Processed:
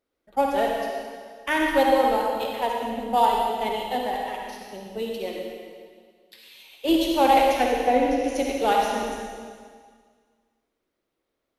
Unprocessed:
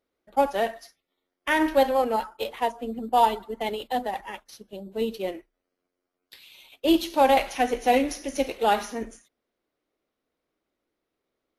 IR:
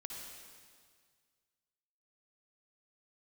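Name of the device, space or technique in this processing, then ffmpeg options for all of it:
stairwell: -filter_complex "[0:a]asettb=1/sr,asplit=3[s0][s1][s2];[s0]atrim=end=7.644[s3];[s1]atrim=start=7.64:end=8.24,asetpts=PTS-STARTPTS,afade=t=in:d=0.004:c=qsin,afade=t=out:st=0.596:d=0.004:c=qsin,lowpass=f=1500:p=1[s4];[s2]atrim=start=8.236[s5];[s3][s4]acrossfade=d=0.004:c1=hsin:c2=qsin[s6];[s6][s5]acrossfade=d=0.004:c1=qsin:c2=hsin[s7];[1:a]atrim=start_sample=2205[s8];[s7][s8]afir=irnorm=-1:irlink=0,asettb=1/sr,asplit=3[s9][s10][s11];[s9]atrim=end=4.984[s12];[s10]atrim=start=4.98:end=6.89,asetpts=PTS-STARTPTS,afade=t=in:d=0.004:c=qsin,afade=t=out:st=1.906:d=0.004:c=qsin,lowshelf=f=360:g=-6[s13];[s11]atrim=start=6.886[s14];[s12][s13]acrossfade=d=0.004:c1=hsin:c2=qsin[s15];[s15][s14]acrossfade=d=0.004:c1=qsin:c2=hsin,volume=1.68"

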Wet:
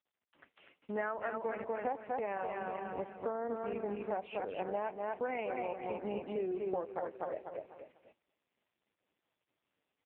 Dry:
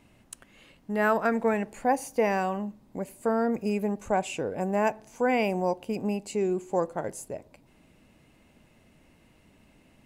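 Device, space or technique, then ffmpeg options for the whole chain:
voicemail: -af "aecho=1:1:245|490|735|980|1225:0.562|0.214|0.0812|0.0309|0.0117,agate=range=0.0158:threshold=0.00224:ratio=16:detection=peak,highpass=360,lowpass=2800,highshelf=f=6500:g=4,acompressor=threshold=0.0251:ratio=10" -ar 8000 -c:a libopencore_amrnb -b:a 4750

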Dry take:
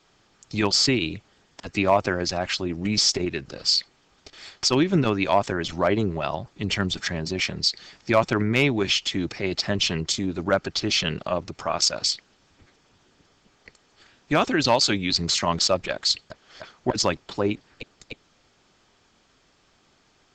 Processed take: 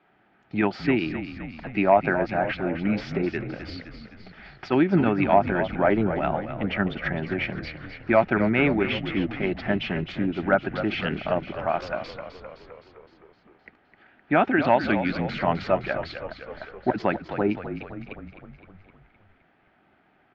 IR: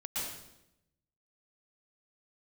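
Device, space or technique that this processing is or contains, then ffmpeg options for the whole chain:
bass cabinet: -filter_complex "[0:a]highpass=86,equalizer=f=92:t=q:w=4:g=-10,equalizer=f=140:t=q:w=4:g=-5,equalizer=f=220:t=q:w=4:g=4,equalizer=f=490:t=q:w=4:g=-6,equalizer=f=750:t=q:w=4:g=5,equalizer=f=1100:t=q:w=4:g=-9,lowpass=f=2300:w=0.5412,lowpass=f=2300:w=1.3066,equalizer=f=230:w=4.5:g=-3,equalizer=f=1400:w=4.6:g=5.5,bandreject=f=1400:w=22,asplit=8[s0][s1][s2][s3][s4][s5][s6][s7];[s1]adelay=258,afreqshift=-43,volume=0.316[s8];[s2]adelay=516,afreqshift=-86,volume=0.193[s9];[s3]adelay=774,afreqshift=-129,volume=0.117[s10];[s4]adelay=1032,afreqshift=-172,volume=0.0716[s11];[s5]adelay=1290,afreqshift=-215,volume=0.0437[s12];[s6]adelay=1548,afreqshift=-258,volume=0.0266[s13];[s7]adelay=1806,afreqshift=-301,volume=0.0162[s14];[s0][s8][s9][s10][s11][s12][s13][s14]amix=inputs=8:normalize=0,volume=1.19"

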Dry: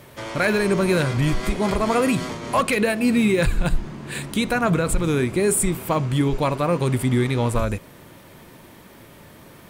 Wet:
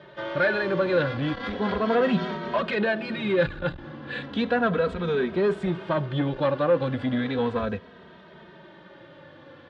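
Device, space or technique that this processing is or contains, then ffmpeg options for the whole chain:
barber-pole flanger into a guitar amplifier: -filter_complex "[0:a]asplit=2[s0][s1];[s1]adelay=2.8,afreqshift=-0.35[s2];[s0][s2]amix=inputs=2:normalize=1,asoftclip=type=tanh:threshold=0.133,highpass=89,equalizer=f=120:t=q:w=4:g=-8,equalizer=f=530:t=q:w=4:g=6,equalizer=f=1600:t=q:w=4:g=7,equalizer=f=2300:t=q:w=4:g=-6,equalizer=f=3500:t=q:w=4:g=4,lowpass=f=3900:w=0.5412,lowpass=f=3900:w=1.3066,equalizer=f=9300:t=o:w=0.89:g=-5,asettb=1/sr,asplit=3[s3][s4][s5];[s3]atrim=end=2.004[s6];[s4]atrim=start=2:end=2.48,asetpts=PTS-STARTPTS,afade=t=in:d=0.004:c=qsin,afade=t=out:st=0.476:d=0.004:c=qsin,aecho=1:1:5.3:0.71,atrim=end_sample=21168[s7];[s5]atrim=start=2.476[s8];[s6][s7]acrossfade=d=0.004:c1=hsin:c2=qsin[s9];[s9][s8]acrossfade=d=0.004:c1=qsin:c2=hsin"

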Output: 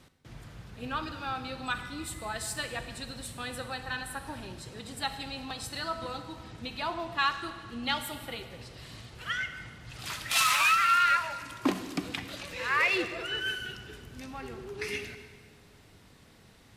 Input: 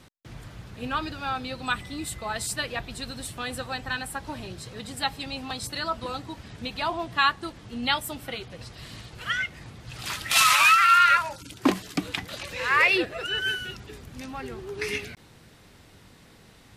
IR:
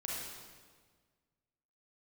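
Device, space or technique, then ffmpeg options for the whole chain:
saturated reverb return: -filter_complex "[0:a]asplit=2[s0][s1];[1:a]atrim=start_sample=2205[s2];[s1][s2]afir=irnorm=-1:irlink=0,asoftclip=type=tanh:threshold=0.0944,volume=0.531[s3];[s0][s3]amix=inputs=2:normalize=0,volume=0.422"

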